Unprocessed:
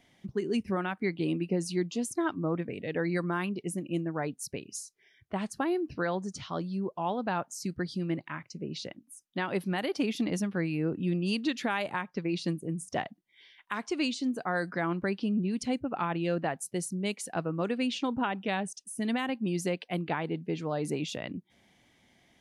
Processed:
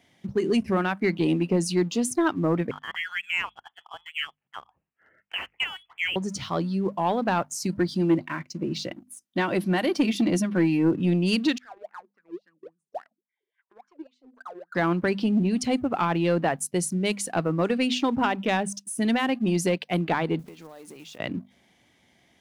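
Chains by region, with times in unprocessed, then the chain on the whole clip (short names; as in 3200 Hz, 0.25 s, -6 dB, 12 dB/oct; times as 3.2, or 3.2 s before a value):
2.71–6.16 HPF 800 Hz 24 dB/oct + inverted band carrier 3700 Hz
7.74–10.95 bell 340 Hz +8 dB 0.22 oct + notch comb 420 Hz
11.58–14.75 compressor 2:1, threshold -33 dBFS + wah 3.6 Hz 350–1600 Hz, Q 16
20.39–21.2 block floating point 5-bit + HPF 310 Hz 6 dB/oct + compressor 12:1, threshold -47 dBFS
whole clip: HPF 45 Hz 24 dB/oct; notches 50/100/150/200/250 Hz; sample leveller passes 1; gain +4 dB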